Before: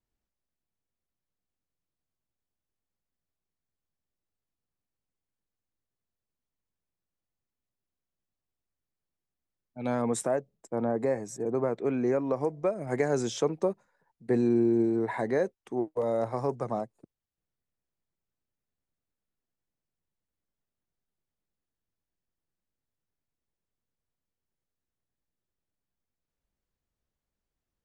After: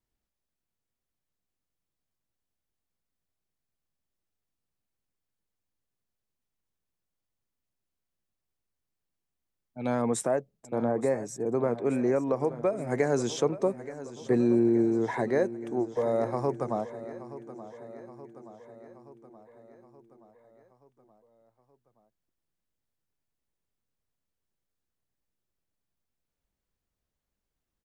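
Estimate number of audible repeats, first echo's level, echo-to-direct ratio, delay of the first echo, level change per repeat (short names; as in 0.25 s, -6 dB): 5, -15.0 dB, -13.0 dB, 0.875 s, -4.5 dB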